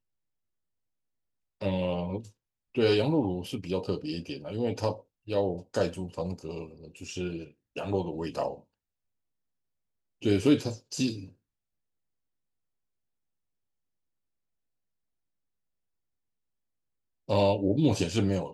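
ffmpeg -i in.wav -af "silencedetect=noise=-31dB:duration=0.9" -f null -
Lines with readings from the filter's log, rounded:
silence_start: 0.00
silence_end: 1.62 | silence_duration: 1.62
silence_start: 8.53
silence_end: 10.25 | silence_duration: 1.72
silence_start: 11.14
silence_end: 17.30 | silence_duration: 6.16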